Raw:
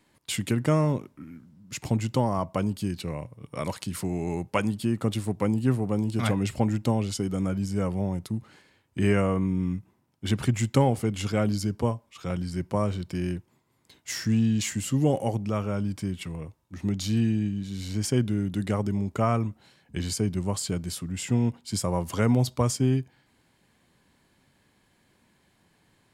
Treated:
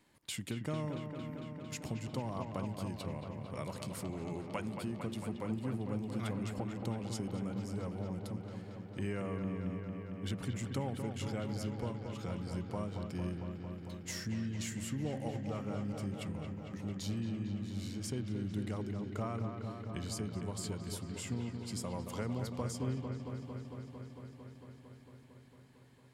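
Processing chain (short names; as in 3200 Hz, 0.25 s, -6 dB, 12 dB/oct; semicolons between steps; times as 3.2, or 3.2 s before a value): compressor 2:1, threshold -39 dBFS, peak gain reduction 13 dB; on a send: dark delay 0.226 s, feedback 81%, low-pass 3000 Hz, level -6.5 dB; on the sum: gain -4.5 dB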